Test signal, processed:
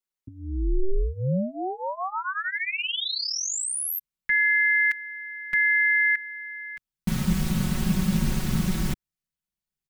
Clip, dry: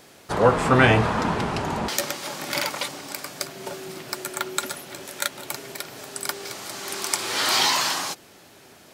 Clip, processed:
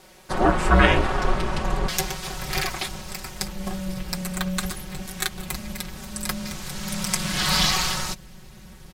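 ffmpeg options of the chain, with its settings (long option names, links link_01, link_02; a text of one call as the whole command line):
ffmpeg -i in.wav -af "aecho=1:1:5.4:0.85,aeval=exprs='val(0)*sin(2*PI*190*n/s)':channel_layout=same,asubboost=boost=7.5:cutoff=180" out.wav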